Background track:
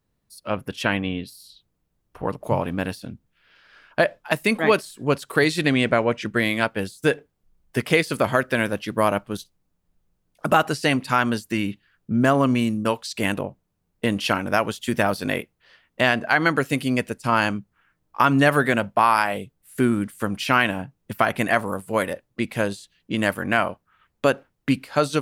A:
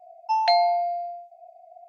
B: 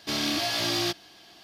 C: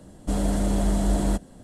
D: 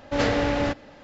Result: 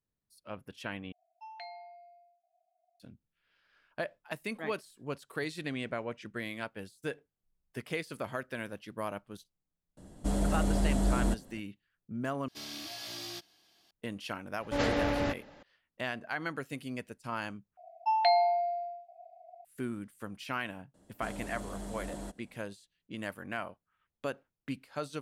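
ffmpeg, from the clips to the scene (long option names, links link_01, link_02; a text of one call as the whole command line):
ffmpeg -i bed.wav -i cue0.wav -i cue1.wav -i cue2.wav -i cue3.wav -filter_complex "[1:a]asplit=2[link_01][link_02];[3:a]asplit=2[link_03][link_04];[0:a]volume=-17dB[link_05];[link_01]bandpass=frequency=1900:width_type=q:width=1.2:csg=0[link_06];[2:a]highshelf=frequency=4900:gain=8.5[link_07];[link_02]lowpass=frequency=4300:width=0.5412,lowpass=frequency=4300:width=1.3066[link_08];[link_04]lowshelf=frequency=190:gain=-9.5[link_09];[link_05]asplit=4[link_10][link_11][link_12][link_13];[link_10]atrim=end=1.124[link_14];[link_06]atrim=end=1.88,asetpts=PTS-STARTPTS,volume=-18dB[link_15];[link_11]atrim=start=2.996:end=12.484[link_16];[link_07]atrim=end=1.43,asetpts=PTS-STARTPTS,volume=-17.5dB[link_17];[link_12]atrim=start=13.906:end=17.774[link_18];[link_08]atrim=end=1.88,asetpts=PTS-STARTPTS,volume=-5dB[link_19];[link_13]atrim=start=19.646[link_20];[link_03]atrim=end=1.63,asetpts=PTS-STARTPTS,volume=-5.5dB,afade=type=in:duration=0.004:curve=hsin,afade=type=out:start_time=1.626:duration=0.004:curve=hsin,adelay=9970[link_21];[4:a]atrim=end=1.03,asetpts=PTS-STARTPTS,volume=-6.5dB,afade=type=in:duration=0.004:curve=hsin,afade=type=out:start_time=1.026:duration=0.004:curve=hsin,adelay=643860S[link_22];[link_09]atrim=end=1.63,asetpts=PTS-STARTPTS,volume=-13.5dB,afade=type=in:duration=0.004:curve=hsin,afade=type=out:start_time=1.626:duration=0.004:curve=hsin,adelay=20940[link_23];[link_14][link_15]acrossfade=duration=0.004:curve1=hsin:curve2=hsin[link_24];[link_24][link_16]acrossfade=duration=0.004:curve1=hsin:curve2=hsin[link_25];[link_25][link_17]acrossfade=duration=0.004:curve1=hsin:curve2=hsin[link_26];[link_26][link_18]acrossfade=duration=0.004:curve1=hsin:curve2=hsin[link_27];[link_27][link_19]acrossfade=duration=0.004:curve1=hsin:curve2=hsin[link_28];[link_28][link_20]acrossfade=duration=0.004:curve1=hsin:curve2=hsin[link_29];[link_29][link_21][link_22][link_23]amix=inputs=4:normalize=0" out.wav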